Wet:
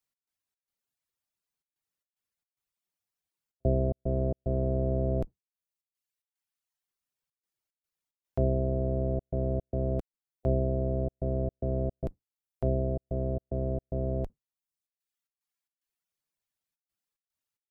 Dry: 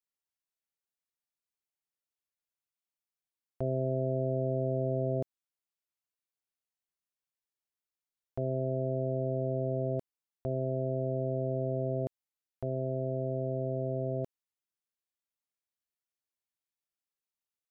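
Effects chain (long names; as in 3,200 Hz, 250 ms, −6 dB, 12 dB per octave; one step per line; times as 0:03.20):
sub-octave generator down 1 octave, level +2 dB
reverb reduction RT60 1.3 s
gate pattern "x.xx.xxxxxxx.x" 111 BPM −60 dB
level +5.5 dB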